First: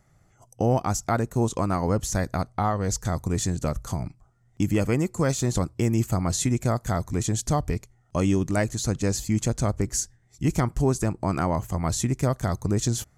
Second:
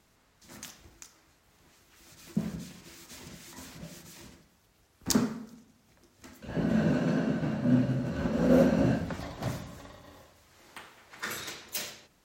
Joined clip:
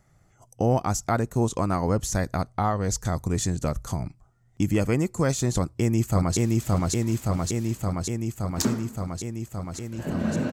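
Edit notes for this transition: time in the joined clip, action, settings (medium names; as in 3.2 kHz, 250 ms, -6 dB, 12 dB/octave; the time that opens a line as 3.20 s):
first
5.58–6.37 s: echo throw 570 ms, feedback 80%, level -0.5 dB
6.37 s: go over to second from 2.87 s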